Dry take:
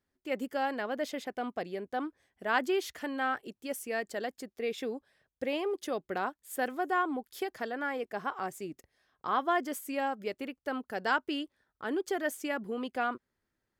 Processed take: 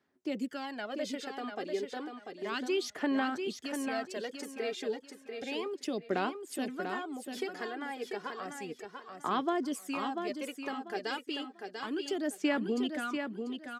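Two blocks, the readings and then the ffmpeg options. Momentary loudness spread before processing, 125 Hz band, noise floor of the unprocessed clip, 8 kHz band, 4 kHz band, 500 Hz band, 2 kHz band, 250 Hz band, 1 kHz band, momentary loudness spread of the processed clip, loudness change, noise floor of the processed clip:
9 LU, +2.0 dB, under -85 dBFS, +0.5 dB, +2.5 dB, -1.5 dB, -4.0 dB, +2.5 dB, -4.5 dB, 9 LU, -1.5 dB, -57 dBFS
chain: -filter_complex "[0:a]highpass=200,acrossover=split=330|3000[a][b][c];[b]acompressor=threshold=-42dB:ratio=4[d];[a][d][c]amix=inputs=3:normalize=0,lowpass=7.5k,bandreject=f=510:w=12,aphaser=in_gain=1:out_gain=1:delay=2.5:decay=0.61:speed=0.32:type=sinusoidal,asplit=2[e][f];[f]aecho=0:1:692|1384|2076:0.501|0.125|0.0313[g];[e][g]amix=inputs=2:normalize=0,volume=1.5dB"

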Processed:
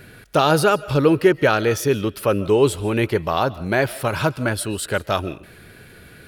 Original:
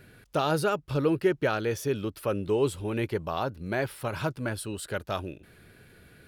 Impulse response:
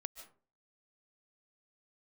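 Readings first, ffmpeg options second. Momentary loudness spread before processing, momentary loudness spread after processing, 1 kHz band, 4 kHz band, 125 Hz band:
9 LU, 8 LU, +10.5 dB, +11.0 dB, +9.0 dB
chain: -filter_complex "[0:a]asplit=2[a][b];[b]lowshelf=f=420:g=-10[c];[1:a]atrim=start_sample=2205[d];[c][d]afir=irnorm=-1:irlink=0,volume=-2dB[e];[a][e]amix=inputs=2:normalize=0,volume=7.5dB"

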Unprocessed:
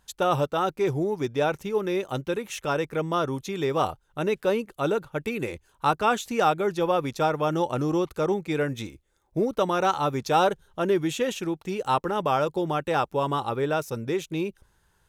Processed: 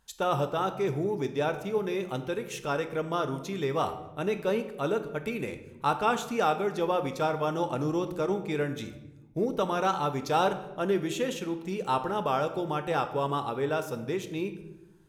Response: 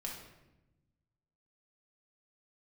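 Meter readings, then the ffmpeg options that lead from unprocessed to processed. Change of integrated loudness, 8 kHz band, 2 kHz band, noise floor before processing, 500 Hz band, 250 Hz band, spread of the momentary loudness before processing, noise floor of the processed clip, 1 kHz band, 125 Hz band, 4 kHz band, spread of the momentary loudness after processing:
-3.5 dB, -4.0 dB, -4.0 dB, -67 dBFS, -3.5 dB, -3.5 dB, 7 LU, -51 dBFS, -3.5 dB, -3.5 dB, -3.5 dB, 7 LU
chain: -filter_complex "[0:a]asplit=2[a][b];[1:a]atrim=start_sample=2205[c];[b][c]afir=irnorm=-1:irlink=0,volume=-2dB[d];[a][d]amix=inputs=2:normalize=0,volume=-7.5dB"

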